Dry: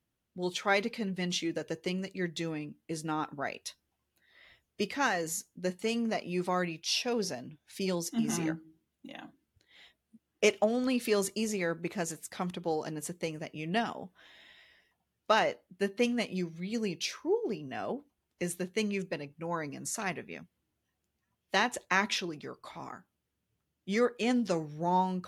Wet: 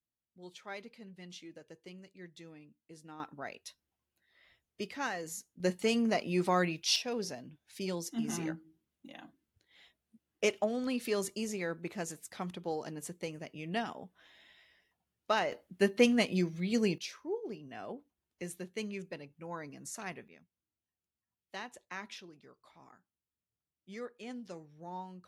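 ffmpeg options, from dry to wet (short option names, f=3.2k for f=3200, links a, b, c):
-af "asetnsamples=n=441:p=0,asendcmd='3.2 volume volume -7dB;5.6 volume volume 2dB;6.96 volume volume -4.5dB;15.52 volume volume 3.5dB;16.98 volume volume -7.5dB;20.28 volume volume -15.5dB',volume=-16.5dB"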